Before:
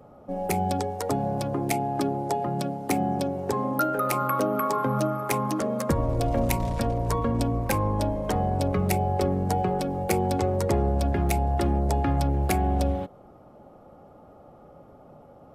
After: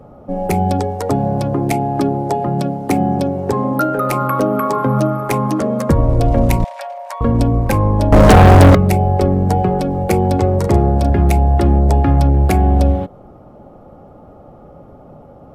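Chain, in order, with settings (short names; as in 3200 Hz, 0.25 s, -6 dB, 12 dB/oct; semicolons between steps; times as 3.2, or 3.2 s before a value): tilt -1.5 dB/oct; 6.64–7.21 rippled Chebyshev high-pass 560 Hz, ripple 6 dB; 8.12–8.75 sample leveller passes 5; 10.55–11.1 doubler 37 ms -8 dB; gain +7.5 dB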